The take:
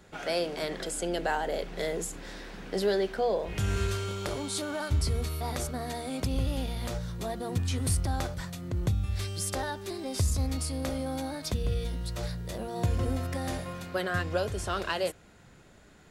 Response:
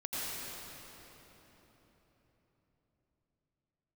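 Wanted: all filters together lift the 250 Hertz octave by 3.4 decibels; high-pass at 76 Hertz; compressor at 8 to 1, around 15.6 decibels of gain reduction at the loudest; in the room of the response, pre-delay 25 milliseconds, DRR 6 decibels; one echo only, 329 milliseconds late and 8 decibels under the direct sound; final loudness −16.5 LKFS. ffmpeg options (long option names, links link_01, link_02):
-filter_complex "[0:a]highpass=76,equalizer=frequency=250:width_type=o:gain=4.5,acompressor=threshold=-39dB:ratio=8,aecho=1:1:329:0.398,asplit=2[link_01][link_02];[1:a]atrim=start_sample=2205,adelay=25[link_03];[link_02][link_03]afir=irnorm=-1:irlink=0,volume=-11dB[link_04];[link_01][link_04]amix=inputs=2:normalize=0,volume=24.5dB"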